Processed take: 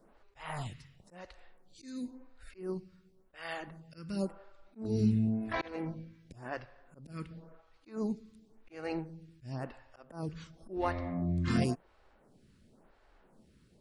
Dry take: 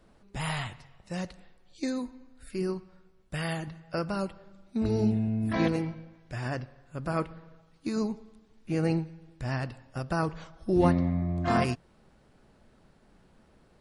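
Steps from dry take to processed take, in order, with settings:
volume swells 263 ms
phaser with staggered stages 0.94 Hz

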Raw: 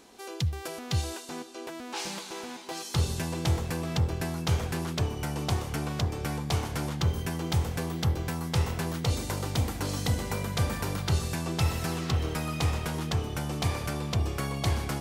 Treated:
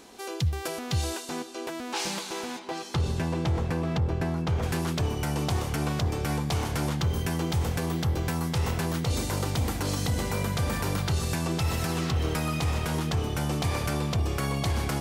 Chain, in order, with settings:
0:02.58–0:04.62: low-pass filter 2,400 Hz → 1,400 Hz 6 dB per octave
brickwall limiter −23 dBFS, peak gain reduction 8 dB
level +4.5 dB

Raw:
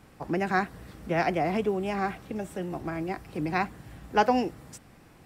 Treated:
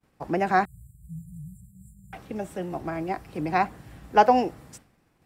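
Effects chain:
dynamic equaliser 710 Hz, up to +7 dB, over −39 dBFS, Q 1.1
0:00.65–0:02.13: linear-phase brick-wall band-stop 170–7,100 Hz
downward expander −45 dBFS

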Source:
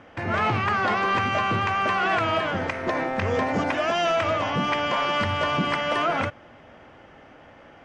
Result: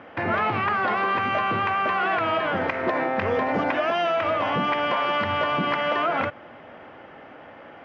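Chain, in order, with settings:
high-pass filter 280 Hz 6 dB per octave
downward compressor, threshold −26 dBFS, peak gain reduction 6 dB
high-frequency loss of the air 260 metres
level +7 dB

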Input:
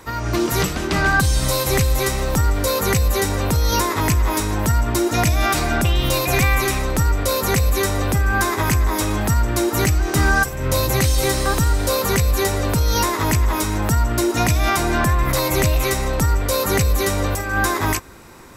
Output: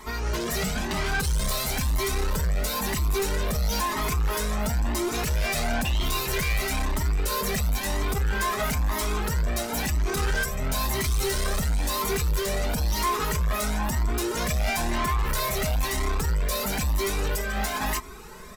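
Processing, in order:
comb filter 4.7 ms, depth 89%
soft clipping −22 dBFS, distortion −7 dB
flanger whose copies keep moving one way rising 1 Hz
level +2 dB

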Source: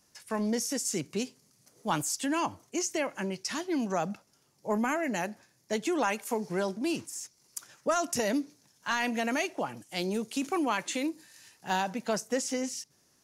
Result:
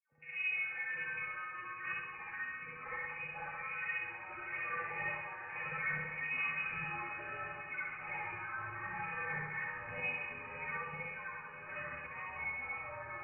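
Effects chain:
turntable start at the beginning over 0.52 s
source passing by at 0:05.55, 16 m/s, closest 23 metres
low-shelf EQ 230 Hz −7.5 dB
leveller curve on the samples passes 3
brickwall limiter −28 dBFS, peak gain reduction 10.5 dB
tuned comb filter 170 Hz, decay 0.16 s, harmonics odd, mix 100%
voice inversion scrambler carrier 2,700 Hz
spring reverb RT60 1 s, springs 59 ms, chirp 25 ms, DRR −6.5 dB
delay with pitch and tempo change per echo 244 ms, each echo −6 semitones, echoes 2, each echo −6 dB
on a send: feedback delay with all-pass diffusion 622 ms, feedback 59%, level −10 dB

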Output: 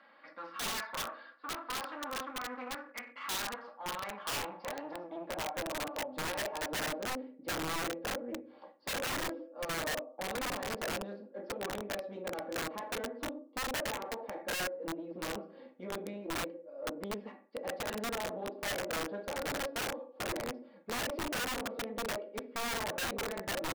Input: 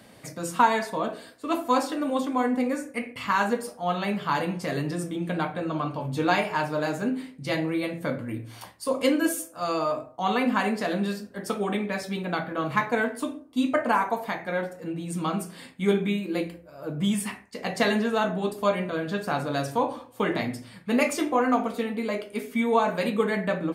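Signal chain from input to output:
downsampling to 11,025 Hz
brickwall limiter −17.5 dBFS, peak gain reduction 9 dB
high-pass filter 180 Hz 24 dB per octave
comb filter 3.6 ms, depth 72%
hum removal 387.5 Hz, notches 3
asymmetric clip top −35.5 dBFS
band-pass filter sweep 1,300 Hz → 480 Hz, 0:03.30–0:06.93
wrap-around overflow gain 30.5 dB

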